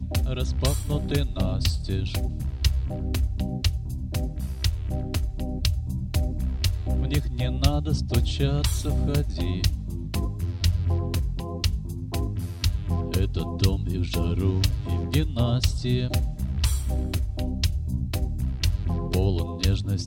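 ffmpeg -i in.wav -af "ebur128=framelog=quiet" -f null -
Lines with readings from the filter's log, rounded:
Integrated loudness:
  I:         -26.6 LUFS
  Threshold: -36.6 LUFS
Loudness range:
  LRA:         2.9 LU
  Threshold: -46.7 LUFS
  LRA low:   -28.3 LUFS
  LRA high:  -25.4 LUFS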